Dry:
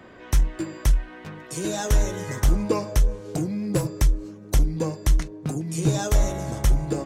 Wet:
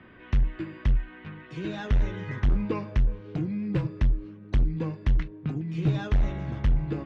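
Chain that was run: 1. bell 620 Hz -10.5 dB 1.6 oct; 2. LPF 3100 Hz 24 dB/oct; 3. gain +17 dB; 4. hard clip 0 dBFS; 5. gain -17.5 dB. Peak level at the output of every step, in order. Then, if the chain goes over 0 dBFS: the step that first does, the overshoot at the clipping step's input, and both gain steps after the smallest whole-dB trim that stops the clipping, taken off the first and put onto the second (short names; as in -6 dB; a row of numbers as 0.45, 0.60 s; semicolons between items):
-10.5, -11.5, +5.5, 0.0, -17.5 dBFS; step 3, 5.5 dB; step 3 +11 dB, step 5 -11.5 dB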